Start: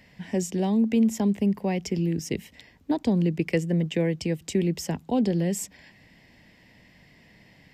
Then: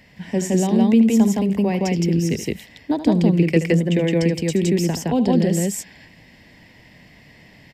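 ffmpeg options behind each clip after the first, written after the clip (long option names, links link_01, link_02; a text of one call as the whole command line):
ffmpeg -i in.wav -af "aecho=1:1:75.8|166.2:0.251|1,volume=4dB" out.wav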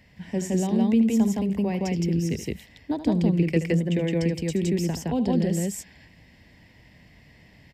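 ffmpeg -i in.wav -af "equalizer=frequency=60:width=0.75:gain=9,volume=-7dB" out.wav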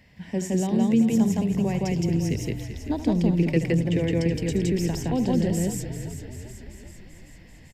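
ffmpeg -i in.wav -filter_complex "[0:a]asplit=9[link_01][link_02][link_03][link_04][link_05][link_06][link_07][link_08][link_09];[link_02]adelay=388,afreqshift=-43,volume=-10.5dB[link_10];[link_03]adelay=776,afreqshift=-86,volume=-14.7dB[link_11];[link_04]adelay=1164,afreqshift=-129,volume=-18.8dB[link_12];[link_05]adelay=1552,afreqshift=-172,volume=-23dB[link_13];[link_06]adelay=1940,afreqshift=-215,volume=-27.1dB[link_14];[link_07]adelay=2328,afreqshift=-258,volume=-31.3dB[link_15];[link_08]adelay=2716,afreqshift=-301,volume=-35.4dB[link_16];[link_09]adelay=3104,afreqshift=-344,volume=-39.6dB[link_17];[link_01][link_10][link_11][link_12][link_13][link_14][link_15][link_16][link_17]amix=inputs=9:normalize=0" out.wav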